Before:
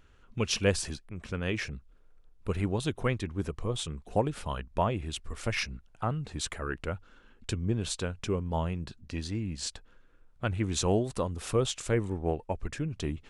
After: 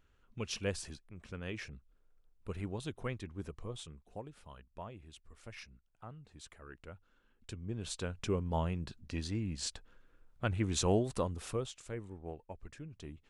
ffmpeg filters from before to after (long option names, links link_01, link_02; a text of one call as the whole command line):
ffmpeg -i in.wav -af "volume=5.5dB,afade=type=out:start_time=3.58:duration=0.61:silence=0.375837,afade=type=in:start_time=6.54:duration=1.12:silence=0.473151,afade=type=in:start_time=7.66:duration=0.63:silence=0.354813,afade=type=out:start_time=11.24:duration=0.47:silence=0.266073" out.wav